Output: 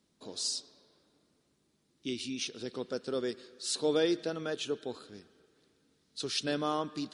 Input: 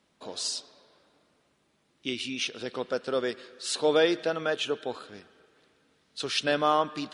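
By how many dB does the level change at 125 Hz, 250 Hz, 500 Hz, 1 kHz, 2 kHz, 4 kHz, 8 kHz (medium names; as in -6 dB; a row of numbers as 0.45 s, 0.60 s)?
-1.5 dB, -1.5 dB, -6.0 dB, -10.0 dB, -10.0 dB, -5.0 dB, -1.5 dB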